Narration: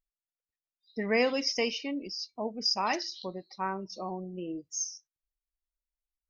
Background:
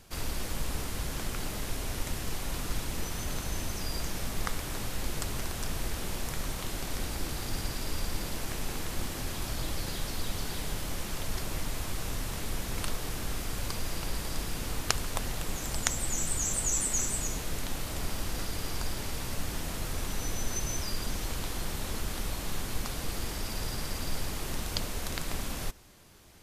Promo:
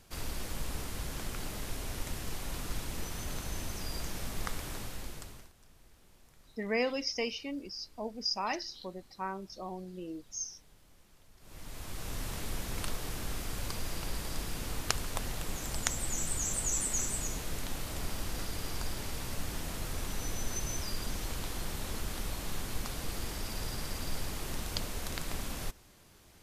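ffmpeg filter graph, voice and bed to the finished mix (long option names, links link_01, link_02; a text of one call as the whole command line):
ffmpeg -i stem1.wav -i stem2.wav -filter_complex "[0:a]adelay=5600,volume=-4.5dB[link_01];[1:a]volume=20dB,afade=type=out:start_time=4.67:duration=0.85:silence=0.0707946,afade=type=in:start_time=11.39:duration=0.86:silence=0.0630957[link_02];[link_01][link_02]amix=inputs=2:normalize=0" out.wav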